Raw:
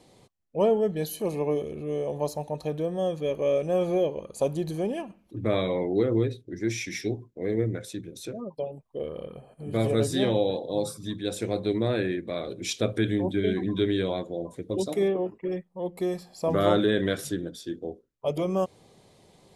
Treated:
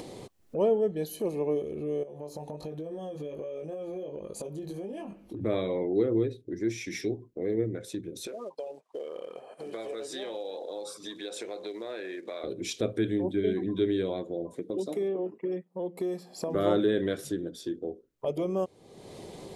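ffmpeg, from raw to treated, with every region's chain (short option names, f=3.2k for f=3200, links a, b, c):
-filter_complex "[0:a]asettb=1/sr,asplit=3[a][b][c];[a]atrim=end=2.034[d];[b]atrim=start=2.03:end=5.41,asetpts=PTS-STARTPTS,afade=t=in:d=0.004:c=qsin,afade=t=out:st=3.376:d=0.004:c=qsin,flanger=delay=19:depth=2.1:speed=1.3,acompressor=threshold=-40dB:ratio=6:attack=3.2:release=140:knee=1:detection=peak[e];[c]atrim=start=5.406[f];[d][e]acrossfade=d=0.004:c1=hsin:c2=qsin[g];[g][f]acrossfade=d=0.004:c1=qsin:c2=hsin,asettb=1/sr,asplit=3[h][i][j];[h]atrim=end=8.274[k];[i]atrim=start=8.27:end=12.44,asetpts=PTS-STARTPTS,afade=t=in:d=0.004:c=qsin,afade=t=out:st=4.166:d=0.004:c=qsin,acompressor=threshold=-33dB:ratio=2.5:attack=3.2:release=140:knee=1:detection=peak,acrusher=bits=8:mode=log:mix=0:aa=0.000001,highpass=620,lowpass=7.9k[l];[j]atrim=start=12.436[m];[k][l]acrossfade=d=0.004:c1=hsin:c2=qsin[n];[n][m]acrossfade=d=0.004:c1=qsin:c2=hsin,asettb=1/sr,asplit=3[o][p][q];[o]atrim=end=14.544[r];[p]atrim=start=14.54:end=16.55,asetpts=PTS-STARTPTS,afade=t=in:d=0.004:c=qsin,afade=t=out:st=2.006:d=0.004:c=qsin,highpass=f=140:w=0.5412,highpass=f=140:w=1.3066,acompressor=threshold=-27dB:ratio=2.5:attack=3.2:release=140:knee=1:detection=peak[s];[q]atrim=start=16.546[t];[r][s]acrossfade=d=0.004:c1=hsin:c2=qsin[u];[u][t]acrossfade=d=0.004:c1=qsin:c2=hsin,equalizer=f=370:t=o:w=1.3:g=7,acompressor=mode=upward:threshold=-21dB:ratio=2.5,volume=-7.5dB"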